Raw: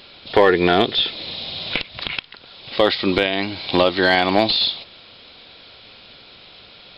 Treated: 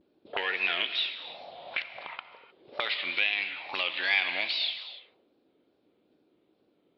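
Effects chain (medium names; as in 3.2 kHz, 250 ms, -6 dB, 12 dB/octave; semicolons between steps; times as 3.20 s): gate -42 dBFS, range -8 dB; wow and flutter 130 cents; auto-wah 300–2500 Hz, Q 3.9, up, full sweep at -18.5 dBFS; gated-style reverb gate 330 ms flat, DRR 9.5 dB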